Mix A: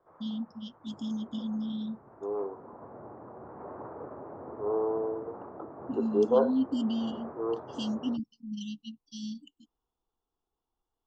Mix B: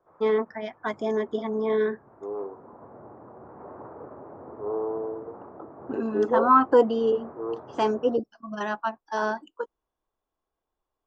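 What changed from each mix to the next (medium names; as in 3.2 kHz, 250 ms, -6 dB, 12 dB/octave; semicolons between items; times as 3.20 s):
first voice: remove brick-wall FIR band-stop 300–2700 Hz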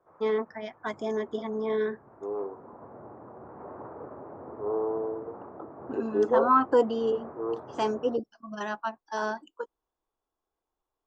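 first voice -4.0 dB; master: add treble shelf 6.6 kHz +10.5 dB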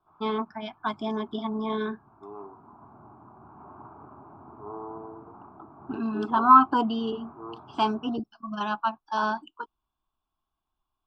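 first voice +7.5 dB; master: add static phaser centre 1.9 kHz, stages 6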